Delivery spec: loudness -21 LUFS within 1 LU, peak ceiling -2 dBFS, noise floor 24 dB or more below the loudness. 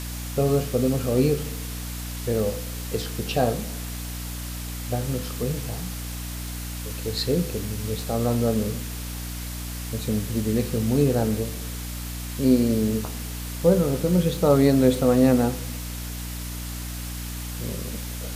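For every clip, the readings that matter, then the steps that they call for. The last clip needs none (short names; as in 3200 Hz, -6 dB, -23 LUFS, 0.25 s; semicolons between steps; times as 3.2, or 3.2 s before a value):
hum 60 Hz; harmonics up to 300 Hz; hum level -31 dBFS; noise floor -33 dBFS; noise floor target -50 dBFS; loudness -25.5 LUFS; peak -6.0 dBFS; loudness target -21.0 LUFS
-> de-hum 60 Hz, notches 5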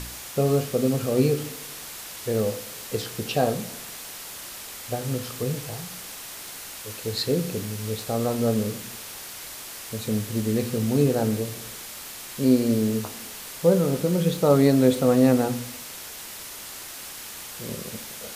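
hum none; noise floor -39 dBFS; noise floor target -50 dBFS
-> denoiser 11 dB, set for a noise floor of -39 dBFS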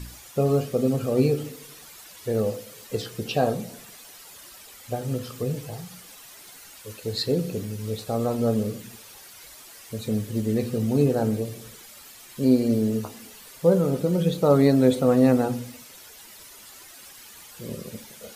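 noise floor -47 dBFS; noise floor target -48 dBFS
-> denoiser 6 dB, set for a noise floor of -47 dBFS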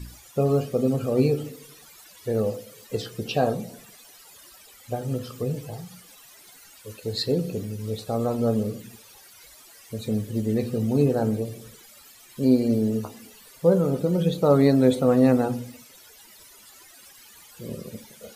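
noise floor -50 dBFS; loudness -24.0 LUFS; peak -6.5 dBFS; loudness target -21.0 LUFS
-> gain +3 dB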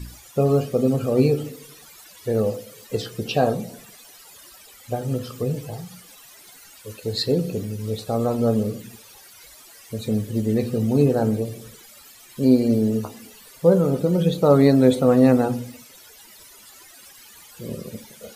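loudness -21.5 LUFS; peak -3.5 dBFS; noise floor -47 dBFS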